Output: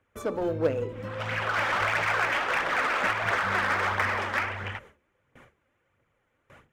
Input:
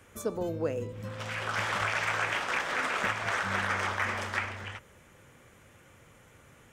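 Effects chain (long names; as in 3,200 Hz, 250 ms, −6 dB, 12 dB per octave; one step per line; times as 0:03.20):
noise gate with hold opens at −45 dBFS
bass and treble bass −4 dB, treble −14 dB
phase shifter 1.5 Hz, delay 4 ms, feedback 40%
in parallel at −9 dB: wave folding −31.5 dBFS
on the sum: hum removal 72.4 Hz, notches 6
level +3.5 dB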